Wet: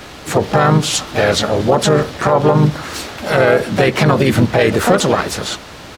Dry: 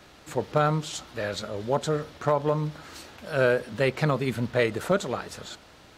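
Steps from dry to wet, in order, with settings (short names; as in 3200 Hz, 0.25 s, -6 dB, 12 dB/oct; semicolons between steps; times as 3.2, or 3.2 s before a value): harmoniser -3 st -7 dB, +5 st -8 dB; maximiser +17.5 dB; gain -1 dB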